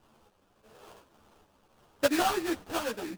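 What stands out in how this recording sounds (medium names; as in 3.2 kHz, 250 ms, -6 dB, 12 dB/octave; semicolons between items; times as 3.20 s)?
a quantiser's noise floor 10-bit, dither triangular; random-step tremolo; aliases and images of a low sample rate 2.1 kHz, jitter 20%; a shimmering, thickened sound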